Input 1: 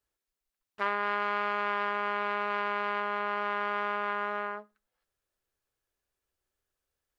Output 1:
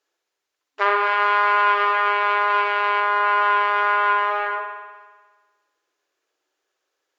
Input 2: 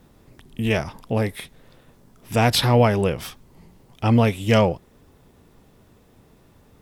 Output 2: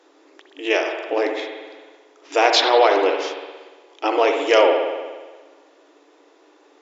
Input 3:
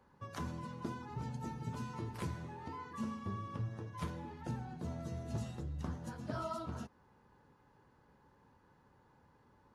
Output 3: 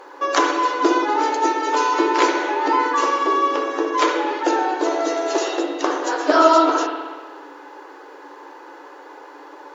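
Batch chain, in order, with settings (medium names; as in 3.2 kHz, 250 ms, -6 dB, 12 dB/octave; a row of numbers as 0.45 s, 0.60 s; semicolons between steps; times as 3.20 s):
FFT band-pass 270–7400 Hz; spring tank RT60 1.4 s, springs 59 ms, chirp 35 ms, DRR 3.5 dB; Opus 96 kbps 48 kHz; normalise loudness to -19 LUFS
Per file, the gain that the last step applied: +10.5 dB, +4.0 dB, +27.5 dB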